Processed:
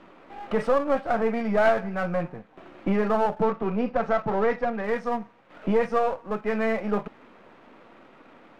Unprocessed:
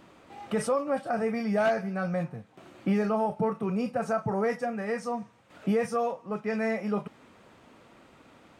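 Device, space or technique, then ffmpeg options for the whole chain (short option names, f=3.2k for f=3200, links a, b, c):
crystal radio: -filter_complex "[0:a]highpass=210,lowpass=2.5k,aeval=exprs='if(lt(val(0),0),0.447*val(0),val(0))':c=same,asettb=1/sr,asplit=3[a][b][c];[a]atrim=end=3.424[d];[b]atrim=start=3.42:end=4.84,asetpts=PTS-STARTPTS,afade=t=in:d=0.004:c=qsin,afade=t=out:st=1.416:d=0.004:c=qsin,lowpass=5.1k[e];[c]atrim=start=4.836[f];[d][e]acrossfade=d=0.004:c1=hsin:c2=qsin[g];[g][f]acrossfade=d=0.004:c1=qsin:c2=hsin,volume=7.5dB"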